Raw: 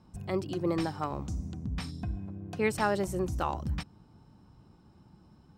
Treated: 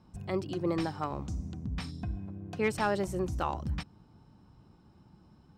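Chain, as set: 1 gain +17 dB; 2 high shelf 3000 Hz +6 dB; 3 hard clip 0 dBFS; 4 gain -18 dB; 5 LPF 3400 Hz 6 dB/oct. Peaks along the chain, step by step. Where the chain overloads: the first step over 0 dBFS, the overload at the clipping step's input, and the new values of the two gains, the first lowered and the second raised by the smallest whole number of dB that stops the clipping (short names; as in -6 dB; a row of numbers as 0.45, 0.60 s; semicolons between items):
+3.5, +4.5, 0.0, -18.0, -18.0 dBFS; step 1, 4.5 dB; step 1 +12 dB, step 4 -13 dB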